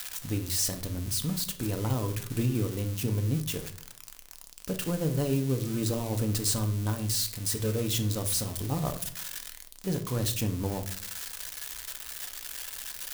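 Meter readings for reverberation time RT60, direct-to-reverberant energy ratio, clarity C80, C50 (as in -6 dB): not exponential, 6.0 dB, 17.0 dB, 12.0 dB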